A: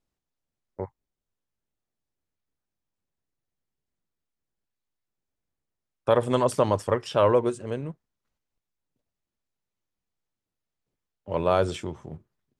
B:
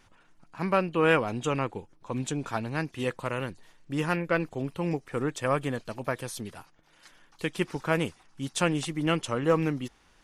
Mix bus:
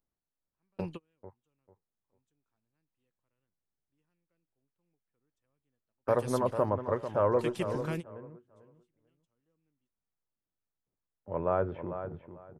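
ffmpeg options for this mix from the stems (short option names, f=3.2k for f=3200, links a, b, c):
-filter_complex "[0:a]lowpass=f=1.8k:w=0.5412,lowpass=f=1.8k:w=1.3066,volume=-6.5dB,asplit=3[a][b][c];[b]volume=-10dB[d];[1:a]acrossover=split=400|3000[e][f][g];[f]acompressor=threshold=-35dB:ratio=6[h];[e][h][g]amix=inputs=3:normalize=0,volume=-5.5dB[i];[c]apad=whole_len=451171[j];[i][j]sidechaingate=range=-46dB:threshold=-51dB:ratio=16:detection=peak[k];[d]aecho=0:1:445|890|1335:1|0.2|0.04[l];[a][k][l]amix=inputs=3:normalize=0"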